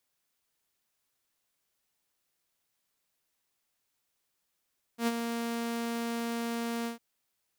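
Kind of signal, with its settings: ADSR saw 233 Hz, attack 91 ms, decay 37 ms, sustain -7 dB, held 1.88 s, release 0.124 s -22 dBFS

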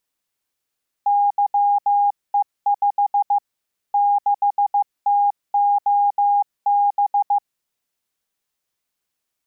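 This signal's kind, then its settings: Morse "YE5 6TOB" 15 wpm 814 Hz -13.5 dBFS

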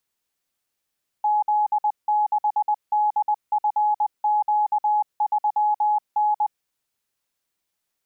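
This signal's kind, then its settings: Morse "Z6DFQ3N" 20 wpm 842 Hz -17 dBFS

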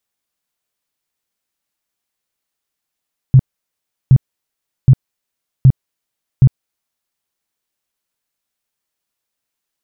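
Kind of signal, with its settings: tone bursts 131 Hz, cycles 7, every 0.77 s, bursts 5, -2.5 dBFS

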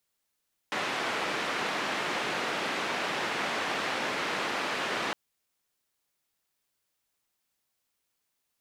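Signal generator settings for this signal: noise band 220–2200 Hz, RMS -31.5 dBFS 4.41 s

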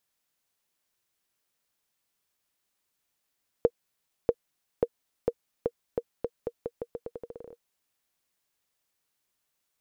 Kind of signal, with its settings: bouncing ball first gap 0.64 s, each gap 0.84, 473 Hz, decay 53 ms -9 dBFS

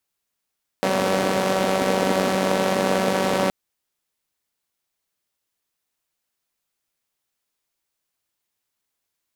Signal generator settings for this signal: four-cylinder engine model, steady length 2.67 s, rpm 5700, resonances 260/490 Hz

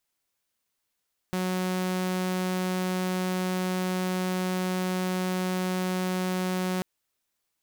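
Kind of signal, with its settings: tone saw 184 Hz -23.5 dBFS 5.49 s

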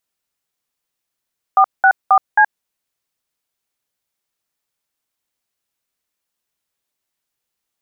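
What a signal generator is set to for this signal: DTMF "464C", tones 73 ms, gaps 0.195 s, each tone -9.5 dBFS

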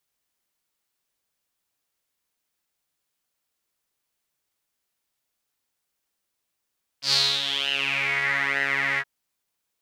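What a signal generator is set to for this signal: synth patch with pulse-width modulation C#3, noise -20 dB, filter bandpass, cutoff 1700 Hz, Q 7, filter envelope 1.5 oct, filter decay 1.22 s, filter sustain 15%, attack 0.104 s, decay 0.28 s, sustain -8.5 dB, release 0.05 s, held 1.97 s, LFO 1.1 Hz, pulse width 30%, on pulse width 18%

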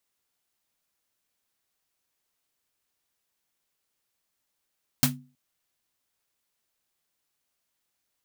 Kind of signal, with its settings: snare drum length 0.32 s, tones 140 Hz, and 250 Hz, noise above 550 Hz, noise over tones 4.5 dB, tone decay 0.37 s, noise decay 0.15 s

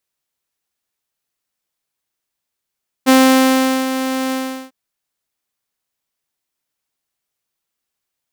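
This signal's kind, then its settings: ADSR saw 262 Hz, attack 30 ms, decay 0.77 s, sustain -11 dB, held 1.26 s, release 0.389 s -4 dBFS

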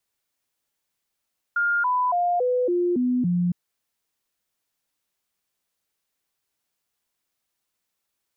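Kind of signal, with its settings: stepped sine 1410 Hz down, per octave 2, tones 7, 0.28 s, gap 0.00 s -19 dBFS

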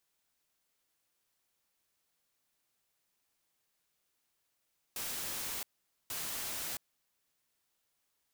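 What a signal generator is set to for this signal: noise bursts white, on 0.67 s, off 0.47 s, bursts 2, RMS -39 dBFS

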